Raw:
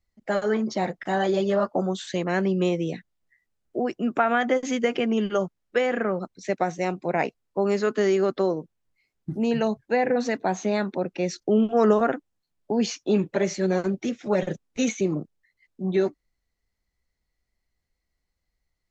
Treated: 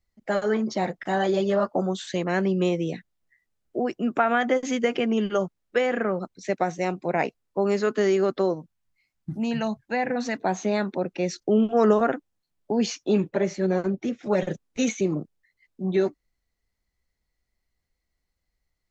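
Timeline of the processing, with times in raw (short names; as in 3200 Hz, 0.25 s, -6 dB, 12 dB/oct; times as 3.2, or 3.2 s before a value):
8.53–10.36 bell 420 Hz -14 dB -> -7.5 dB
13.29–14.23 high shelf 2700 Hz -8.5 dB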